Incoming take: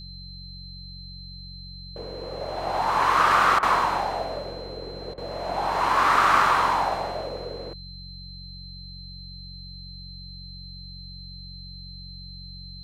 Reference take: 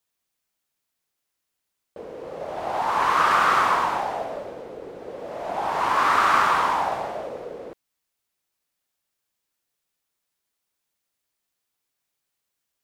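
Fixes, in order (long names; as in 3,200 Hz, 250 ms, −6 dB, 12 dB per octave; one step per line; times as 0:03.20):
hum removal 45.5 Hz, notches 4
notch filter 4,100 Hz, Q 30
repair the gap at 0:03.59/0:05.14, 36 ms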